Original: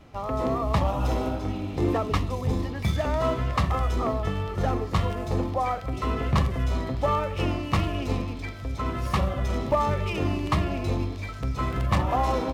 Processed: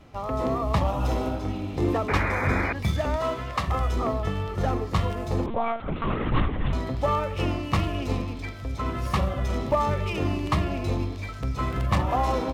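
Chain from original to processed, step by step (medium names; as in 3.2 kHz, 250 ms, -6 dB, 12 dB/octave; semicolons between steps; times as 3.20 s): 2.08–2.73 s: painted sound noise 210–2500 Hz -28 dBFS; 3.16–3.68 s: bass shelf 320 Hz -9 dB; 5.46–6.73 s: monotone LPC vocoder at 8 kHz 230 Hz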